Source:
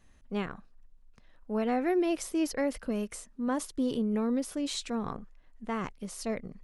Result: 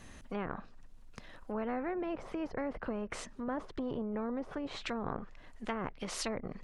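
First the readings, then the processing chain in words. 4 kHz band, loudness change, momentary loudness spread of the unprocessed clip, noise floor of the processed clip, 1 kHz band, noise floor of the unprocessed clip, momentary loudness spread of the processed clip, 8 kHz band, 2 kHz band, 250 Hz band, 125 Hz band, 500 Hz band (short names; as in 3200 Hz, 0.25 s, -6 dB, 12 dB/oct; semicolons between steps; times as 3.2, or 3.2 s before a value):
-4.5 dB, -6.5 dB, 11 LU, -54 dBFS, -3.5 dB, -59 dBFS, 9 LU, -6.5 dB, -2.5 dB, -7.5 dB, -3.5 dB, -5.5 dB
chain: treble ducked by the level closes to 700 Hz, closed at -29 dBFS; spectral compressor 2:1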